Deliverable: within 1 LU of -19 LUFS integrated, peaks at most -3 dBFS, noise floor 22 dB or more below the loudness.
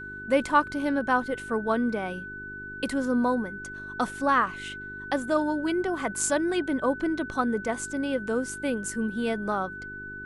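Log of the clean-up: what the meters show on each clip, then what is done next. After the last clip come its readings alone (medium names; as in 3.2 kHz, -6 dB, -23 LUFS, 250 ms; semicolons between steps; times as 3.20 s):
hum 50 Hz; highest harmonic 400 Hz; hum level -42 dBFS; steady tone 1.5 kHz; tone level -37 dBFS; loudness -27.5 LUFS; peak level -9.0 dBFS; loudness target -19.0 LUFS
-> de-hum 50 Hz, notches 8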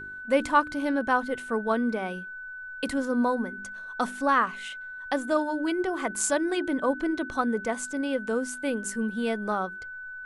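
hum not found; steady tone 1.5 kHz; tone level -37 dBFS
-> band-stop 1.5 kHz, Q 30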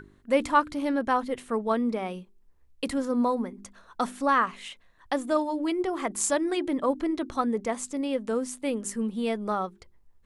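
steady tone not found; loudness -28.0 LUFS; peak level -10.0 dBFS; loudness target -19.0 LUFS
-> trim +9 dB; peak limiter -3 dBFS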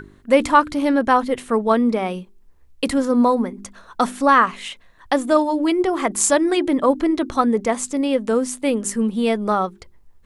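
loudness -19.0 LUFS; peak level -3.0 dBFS; noise floor -51 dBFS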